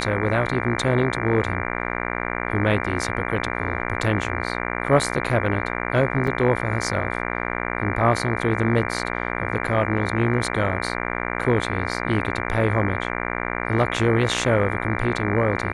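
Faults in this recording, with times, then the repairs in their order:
buzz 60 Hz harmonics 39 -27 dBFS
6.27 gap 3.9 ms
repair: de-hum 60 Hz, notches 39; interpolate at 6.27, 3.9 ms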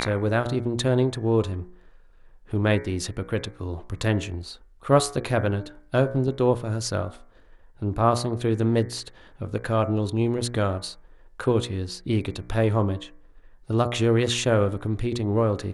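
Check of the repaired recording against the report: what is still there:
none

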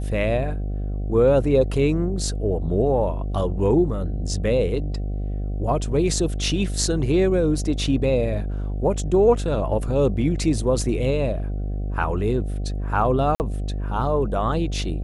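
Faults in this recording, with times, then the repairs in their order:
buzz 50 Hz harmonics 15 -26 dBFS
13.35–13.4 gap 49 ms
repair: de-hum 50 Hz, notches 15; interpolate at 13.35, 49 ms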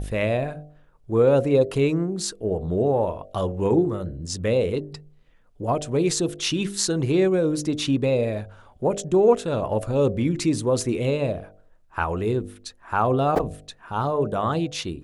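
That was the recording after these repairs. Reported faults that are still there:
none

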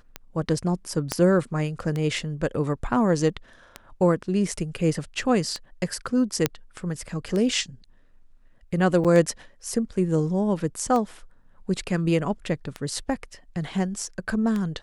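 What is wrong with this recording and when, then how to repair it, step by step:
tick 33 1/3 rpm -16 dBFS
1.12 pop -9 dBFS
6.46 pop -5 dBFS
9.04–9.05 gap 7.2 ms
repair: de-click; interpolate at 9.04, 7.2 ms

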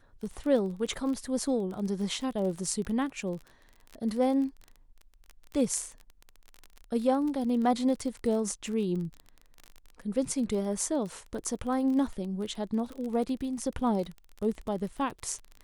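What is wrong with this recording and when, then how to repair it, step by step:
crackle 27/s -35 dBFS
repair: de-click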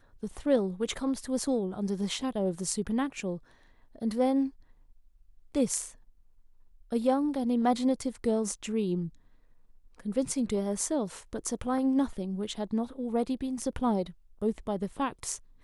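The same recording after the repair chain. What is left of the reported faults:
none

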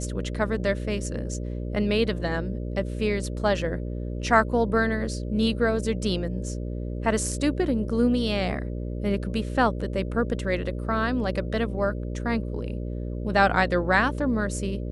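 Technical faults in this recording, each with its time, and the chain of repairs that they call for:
buzz 60 Hz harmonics 10 -31 dBFS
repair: de-hum 60 Hz, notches 10

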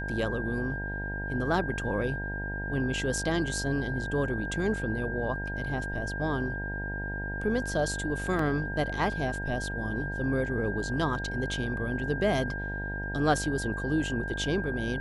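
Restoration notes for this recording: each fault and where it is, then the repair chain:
buzz 50 Hz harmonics 19 -36 dBFS
tone 1600 Hz -35 dBFS
8.39 gap 3.1 ms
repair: de-hum 50 Hz, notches 19; notch 1600 Hz, Q 30; interpolate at 8.39, 3.1 ms

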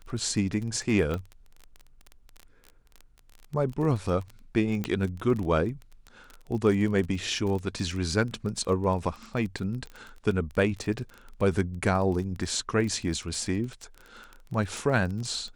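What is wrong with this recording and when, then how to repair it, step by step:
crackle 24/s -33 dBFS
1.14 pop -19 dBFS
4.84 pop -16 dBFS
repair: de-click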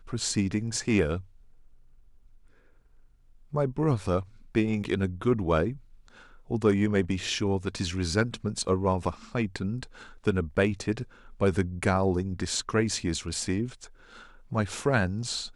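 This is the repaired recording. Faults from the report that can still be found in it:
1.14 pop
4.84 pop

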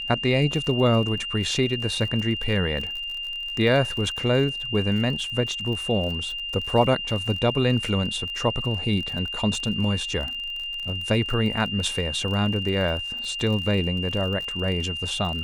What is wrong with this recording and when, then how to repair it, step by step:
crackle 38/s -31 dBFS
tone 2800 Hz -29 dBFS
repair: de-click; notch 2800 Hz, Q 30

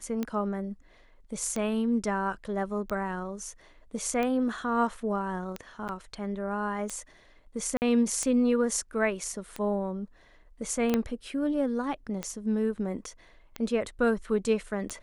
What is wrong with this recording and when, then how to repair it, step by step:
tick 45 rpm -18 dBFS
5.88–5.89 gap 8.5 ms
7.77–7.82 gap 49 ms
10.94 pop -12 dBFS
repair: de-click; interpolate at 5.88, 8.5 ms; interpolate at 7.77, 49 ms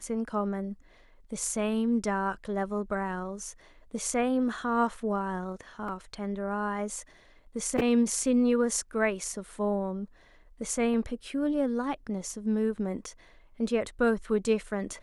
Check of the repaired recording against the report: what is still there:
10.94 pop

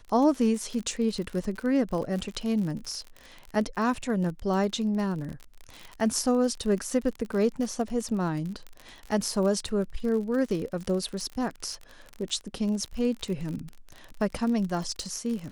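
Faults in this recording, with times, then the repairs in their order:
crackle 44/s -32 dBFS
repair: de-click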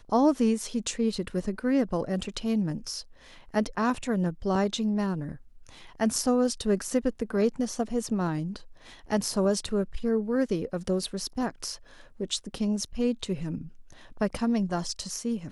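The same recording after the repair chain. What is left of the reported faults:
none

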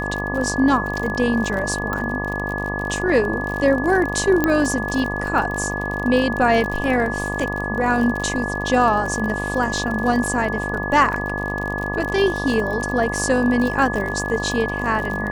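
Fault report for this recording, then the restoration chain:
buzz 50 Hz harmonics 24 -27 dBFS
crackle 47/s -25 dBFS
tone 1700 Hz -26 dBFS
1.93 pop -12 dBFS
4.44 pop -5 dBFS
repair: de-click; de-hum 50 Hz, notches 24; notch 1700 Hz, Q 30

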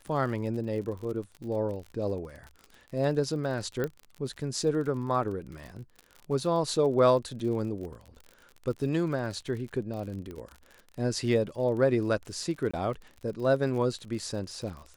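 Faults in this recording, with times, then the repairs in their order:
crackle 46/s -37 dBFS
3.84 pop -18 dBFS
10.31 pop -28 dBFS
12.71–12.73 gap 25 ms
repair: de-click; interpolate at 12.71, 25 ms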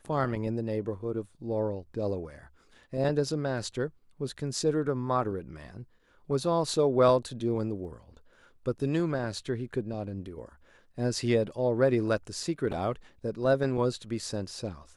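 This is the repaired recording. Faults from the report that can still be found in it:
none

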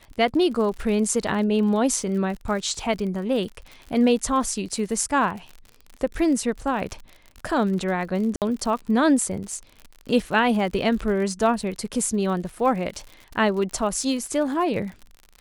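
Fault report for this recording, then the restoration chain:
crackle 59/s -32 dBFS
8.36–8.42 gap 58 ms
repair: de-click; interpolate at 8.36, 58 ms

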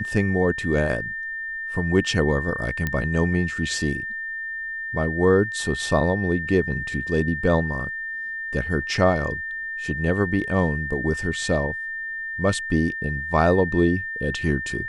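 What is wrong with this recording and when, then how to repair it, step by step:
tone 1800 Hz -28 dBFS
2.87 pop -11 dBFS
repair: de-click; notch 1800 Hz, Q 30

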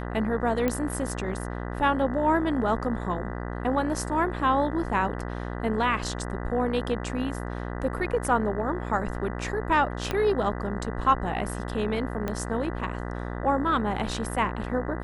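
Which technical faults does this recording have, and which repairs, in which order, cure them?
buzz 60 Hz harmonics 33 -33 dBFS
0.68 pop -13 dBFS
10.11 pop -13 dBFS
12.28 pop -16 dBFS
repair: de-click; de-hum 60 Hz, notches 33

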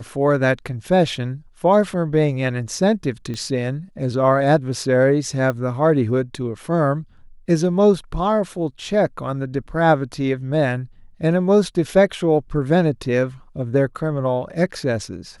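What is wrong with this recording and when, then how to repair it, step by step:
3.34 pop -18 dBFS
5.5 pop -12 dBFS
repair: de-click

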